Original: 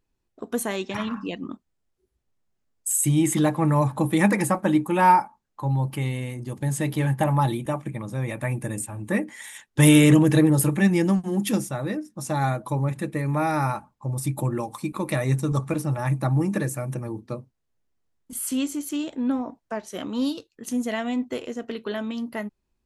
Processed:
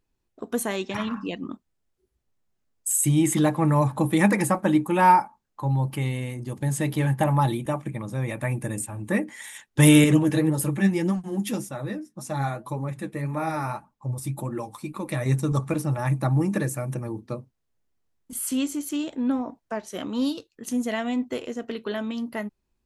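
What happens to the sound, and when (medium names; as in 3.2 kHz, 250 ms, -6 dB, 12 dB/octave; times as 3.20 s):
10.04–15.26 s: flange 1.8 Hz, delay 3.3 ms, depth 7.6 ms, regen +45%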